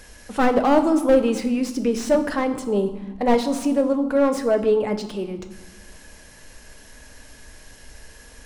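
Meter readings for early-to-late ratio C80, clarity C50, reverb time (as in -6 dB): 13.0 dB, 11.0 dB, 1.2 s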